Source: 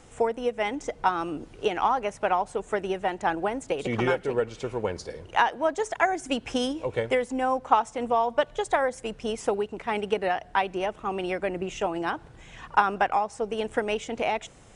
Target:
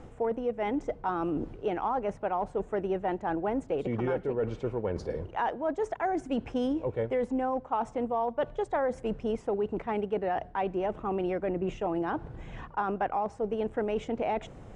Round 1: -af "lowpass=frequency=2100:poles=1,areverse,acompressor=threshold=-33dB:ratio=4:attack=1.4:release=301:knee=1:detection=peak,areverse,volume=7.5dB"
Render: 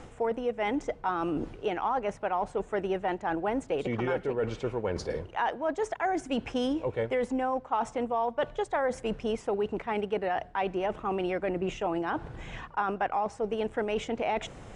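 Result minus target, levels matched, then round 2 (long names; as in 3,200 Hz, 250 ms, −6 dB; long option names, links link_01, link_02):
2,000 Hz band +4.0 dB
-af "lowpass=frequency=620:poles=1,areverse,acompressor=threshold=-33dB:ratio=4:attack=1.4:release=301:knee=1:detection=peak,areverse,volume=7.5dB"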